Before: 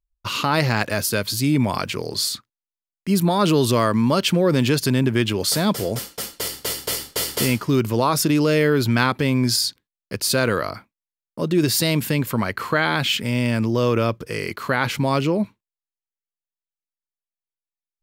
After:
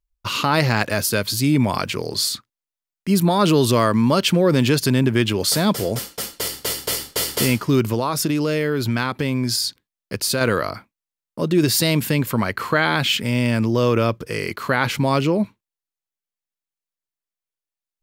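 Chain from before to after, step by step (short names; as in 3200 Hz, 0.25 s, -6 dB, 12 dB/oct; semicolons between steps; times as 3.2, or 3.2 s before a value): 7.93–10.41 compressor 3:1, threshold -20 dBFS, peak gain reduction 6 dB; gain +1.5 dB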